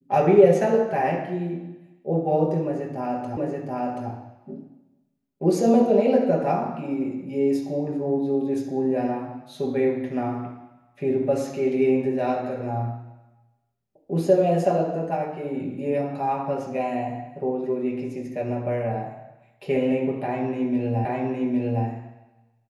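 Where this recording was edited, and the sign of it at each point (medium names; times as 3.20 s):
3.37 s: repeat of the last 0.73 s
21.05 s: repeat of the last 0.81 s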